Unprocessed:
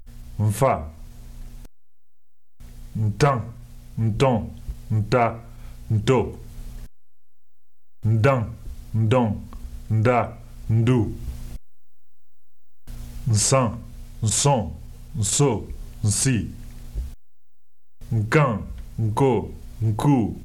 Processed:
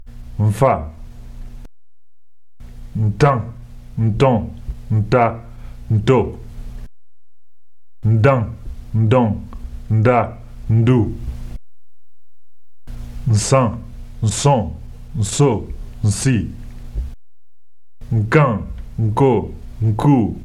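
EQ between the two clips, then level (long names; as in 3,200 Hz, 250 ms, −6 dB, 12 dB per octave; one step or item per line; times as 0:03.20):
high-shelf EQ 4,600 Hz −10.5 dB
+5.5 dB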